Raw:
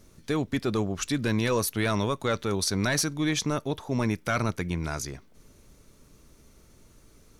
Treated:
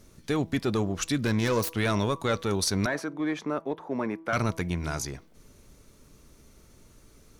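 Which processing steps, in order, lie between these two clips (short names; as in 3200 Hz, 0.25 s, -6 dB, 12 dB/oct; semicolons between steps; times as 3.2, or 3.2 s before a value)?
1.26–1.79 self-modulated delay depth 0.06 ms; 2.86–4.33 three-band isolator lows -23 dB, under 220 Hz, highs -20 dB, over 2100 Hz; in parallel at -8 dB: one-sided clip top -28 dBFS; on the sum: de-hum 162.9 Hz, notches 7; gain -2 dB; Vorbis 192 kbps 48000 Hz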